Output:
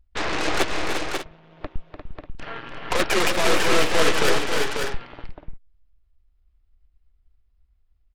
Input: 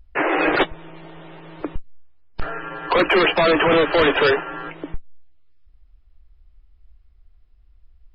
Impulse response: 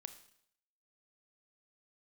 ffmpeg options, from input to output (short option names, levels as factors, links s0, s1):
-af "aeval=exprs='0.422*(cos(1*acos(clip(val(0)/0.422,-1,1)))-cos(1*PI/2))+0.15*(cos(3*acos(clip(val(0)/0.422,-1,1)))-cos(3*PI/2))+0.0266*(cos(5*acos(clip(val(0)/0.422,-1,1)))-cos(5*PI/2))+0.0473*(cos(8*acos(clip(val(0)/0.422,-1,1)))-cos(8*PI/2))':c=same,aecho=1:1:296|350|541|592:0.398|0.422|0.531|0.224"